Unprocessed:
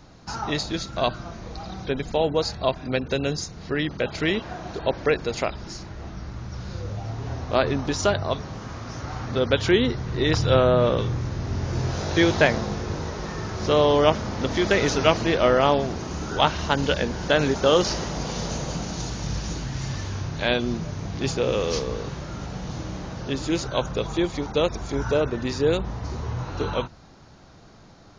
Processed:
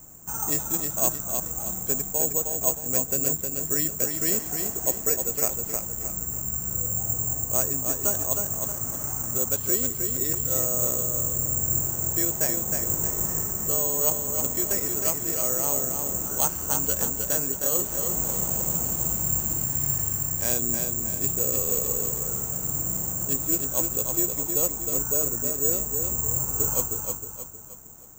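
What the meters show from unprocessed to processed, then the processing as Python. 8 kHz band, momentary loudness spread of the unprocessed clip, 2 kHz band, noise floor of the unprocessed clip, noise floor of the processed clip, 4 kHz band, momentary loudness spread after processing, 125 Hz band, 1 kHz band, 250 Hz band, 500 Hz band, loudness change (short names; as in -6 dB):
+16.0 dB, 14 LU, -13.5 dB, -48 dBFS, -35 dBFS, -13.5 dB, 5 LU, -7.5 dB, -11.0 dB, -8.5 dB, -10.5 dB, +1.0 dB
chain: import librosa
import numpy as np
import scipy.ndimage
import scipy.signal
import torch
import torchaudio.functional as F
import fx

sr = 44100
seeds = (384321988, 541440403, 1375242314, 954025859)

p1 = fx.high_shelf(x, sr, hz=2300.0, db=-11.0)
p2 = fx.rider(p1, sr, range_db=5, speed_s=0.5)
p3 = p2 + fx.echo_feedback(p2, sr, ms=312, feedback_pct=42, wet_db=-5, dry=0)
p4 = (np.kron(scipy.signal.resample_poly(p3, 1, 6), np.eye(6)[0]) * 6)[:len(p3)]
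y = p4 * librosa.db_to_amplitude(-10.0)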